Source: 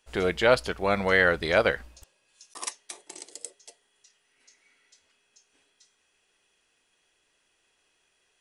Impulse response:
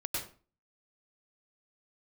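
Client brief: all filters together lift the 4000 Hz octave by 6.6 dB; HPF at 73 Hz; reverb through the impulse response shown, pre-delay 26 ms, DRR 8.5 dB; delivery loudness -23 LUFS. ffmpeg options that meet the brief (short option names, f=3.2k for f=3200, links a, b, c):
-filter_complex "[0:a]highpass=73,equalizer=f=4k:t=o:g=8.5,asplit=2[a][b];[1:a]atrim=start_sample=2205,adelay=26[c];[b][c]afir=irnorm=-1:irlink=0,volume=-12dB[d];[a][d]amix=inputs=2:normalize=0,volume=1dB"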